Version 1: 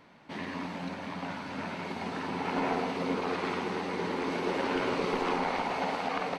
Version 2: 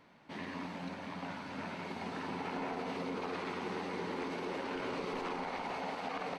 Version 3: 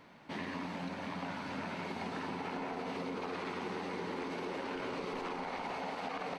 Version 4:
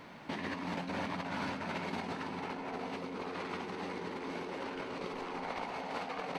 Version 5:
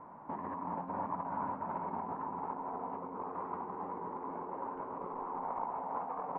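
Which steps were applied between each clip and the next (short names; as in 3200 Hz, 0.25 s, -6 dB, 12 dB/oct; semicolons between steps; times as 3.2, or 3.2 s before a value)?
limiter -24.5 dBFS, peak gain reduction 5.5 dB; gain -5 dB
compressor 4:1, threshold -41 dBFS, peak gain reduction 6 dB; gain +4.5 dB
negative-ratio compressor -42 dBFS, ratio -0.5; gain +3.5 dB
ladder low-pass 1100 Hz, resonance 65%; gain +6 dB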